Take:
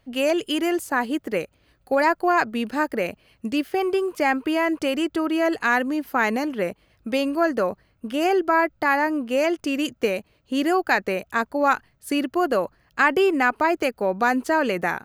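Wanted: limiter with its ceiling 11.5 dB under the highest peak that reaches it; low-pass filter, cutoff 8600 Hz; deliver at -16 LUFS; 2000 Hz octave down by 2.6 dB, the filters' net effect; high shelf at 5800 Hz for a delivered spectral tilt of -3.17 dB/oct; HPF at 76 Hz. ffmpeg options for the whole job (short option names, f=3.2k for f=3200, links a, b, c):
-af "highpass=76,lowpass=8.6k,equalizer=f=2k:t=o:g=-3,highshelf=f=5.8k:g=-4,volume=12dB,alimiter=limit=-6.5dB:level=0:latency=1"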